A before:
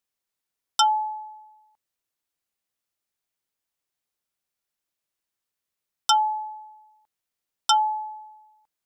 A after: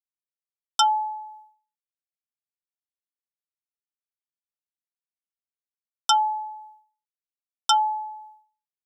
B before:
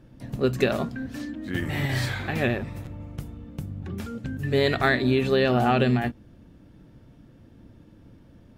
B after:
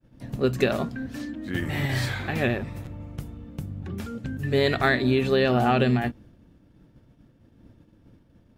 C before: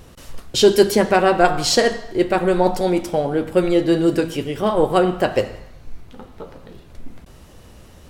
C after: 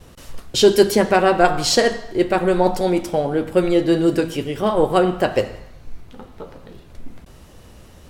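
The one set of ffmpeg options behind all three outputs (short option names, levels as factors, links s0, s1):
-af "agate=range=0.0224:threshold=0.00562:ratio=3:detection=peak"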